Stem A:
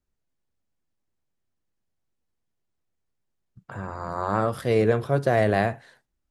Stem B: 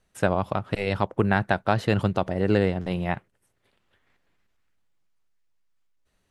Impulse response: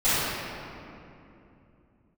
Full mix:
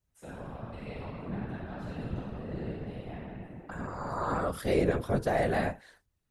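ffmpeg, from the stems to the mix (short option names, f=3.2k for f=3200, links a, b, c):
-filter_complex "[0:a]alimiter=limit=-12.5dB:level=0:latency=1:release=264,volume=2dB,asplit=2[a][b];[1:a]acrossover=split=280[c][d];[d]acompressor=threshold=-26dB:ratio=5[e];[c][e]amix=inputs=2:normalize=0,volume=-15.5dB,asplit=2[f][g];[g]volume=-10.5dB[h];[b]apad=whole_len=277989[i];[f][i]sidechaingate=range=-11dB:threshold=-43dB:ratio=16:detection=peak[j];[2:a]atrim=start_sample=2205[k];[h][k]afir=irnorm=-1:irlink=0[l];[a][j][l]amix=inputs=3:normalize=0,highshelf=f=6.2k:g=6,afftfilt=real='hypot(re,im)*cos(2*PI*random(0))':imag='hypot(re,im)*sin(2*PI*random(1))':win_size=512:overlap=0.75"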